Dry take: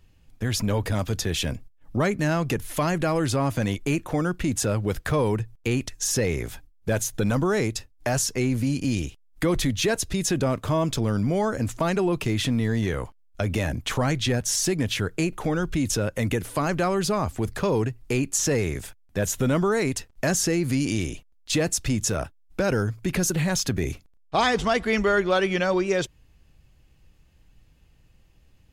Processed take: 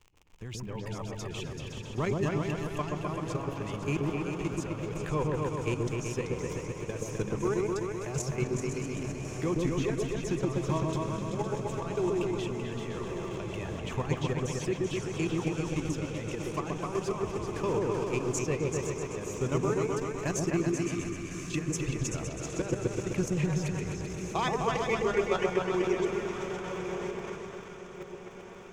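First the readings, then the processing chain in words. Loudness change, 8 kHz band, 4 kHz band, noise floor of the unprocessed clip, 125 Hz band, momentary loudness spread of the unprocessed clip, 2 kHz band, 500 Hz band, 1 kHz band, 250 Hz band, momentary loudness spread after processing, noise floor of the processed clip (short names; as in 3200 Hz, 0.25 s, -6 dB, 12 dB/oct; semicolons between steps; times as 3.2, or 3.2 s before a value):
-7.0 dB, -12.0 dB, -12.0 dB, -57 dBFS, -6.5 dB, 6 LU, -9.5 dB, -5.0 dB, -6.0 dB, -6.5 dB, 9 LU, -43 dBFS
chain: reverb removal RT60 1.7 s; crackle 110/s -34 dBFS; ripple EQ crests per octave 0.72, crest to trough 7 dB; diffused feedback echo 1.1 s, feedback 63%, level -9 dB; spectral gain 20.49–21.69, 380–1000 Hz -10 dB; level quantiser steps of 11 dB; high shelf 7400 Hz -10 dB; on a send: repeats that get brighter 0.128 s, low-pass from 750 Hz, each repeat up 2 oct, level 0 dB; on the sum: gain -6.5 dB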